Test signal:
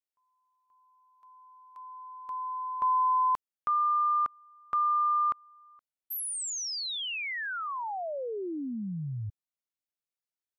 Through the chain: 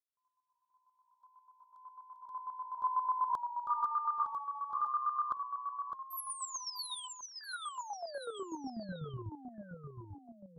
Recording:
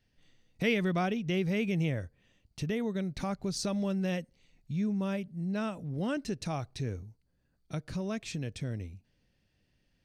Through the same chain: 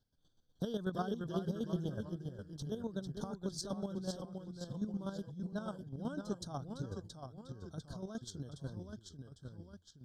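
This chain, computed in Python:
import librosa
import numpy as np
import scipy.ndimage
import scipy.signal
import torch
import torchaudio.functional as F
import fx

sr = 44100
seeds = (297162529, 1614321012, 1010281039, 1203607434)

y = fx.chopper(x, sr, hz=8.1, depth_pct=65, duty_pct=25)
y = fx.echo_pitch(y, sr, ms=293, semitones=-1, count=3, db_per_echo=-6.0)
y = scipy.signal.sosfilt(scipy.signal.cheby1(4, 1.0, [1600.0, 3200.0], 'bandstop', fs=sr, output='sos'), y)
y = y * 10.0 ** (-3.5 / 20.0)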